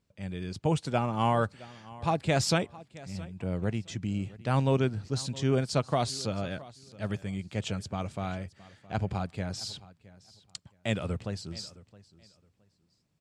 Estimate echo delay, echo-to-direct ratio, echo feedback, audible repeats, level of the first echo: 667 ms, −20.0 dB, 22%, 2, −20.0 dB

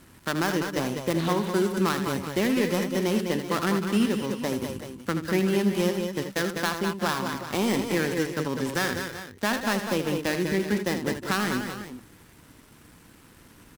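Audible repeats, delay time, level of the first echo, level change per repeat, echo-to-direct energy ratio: 3, 79 ms, −9.5 dB, repeats not evenly spaced, −4.0 dB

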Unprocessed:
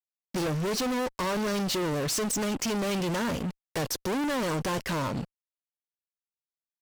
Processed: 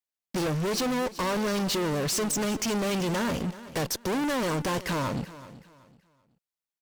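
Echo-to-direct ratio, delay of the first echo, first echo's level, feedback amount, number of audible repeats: −16.0 dB, 379 ms, −16.5 dB, 29%, 2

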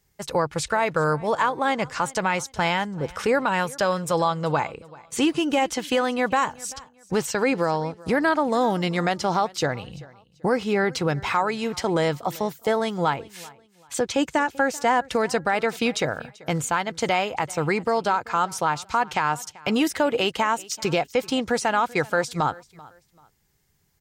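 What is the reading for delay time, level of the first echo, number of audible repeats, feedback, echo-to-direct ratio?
387 ms, −22.0 dB, 2, 28%, −21.5 dB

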